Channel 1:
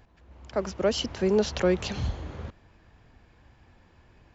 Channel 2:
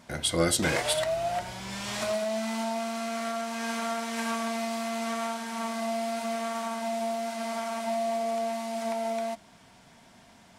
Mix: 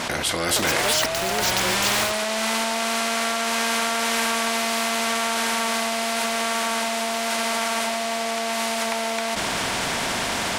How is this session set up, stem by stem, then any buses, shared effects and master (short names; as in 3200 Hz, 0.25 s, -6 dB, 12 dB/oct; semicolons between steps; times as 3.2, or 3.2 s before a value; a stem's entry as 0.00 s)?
-0.5 dB, 0.00 s, no send, HPF 580 Hz 6 dB/oct; high shelf 4800 Hz +11.5 dB; sample gate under -36.5 dBFS
+2.5 dB, 0.00 s, no send, tone controls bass -10 dB, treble -11 dB; fast leveller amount 70%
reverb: off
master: AGC gain up to 5 dB; spectral compressor 2:1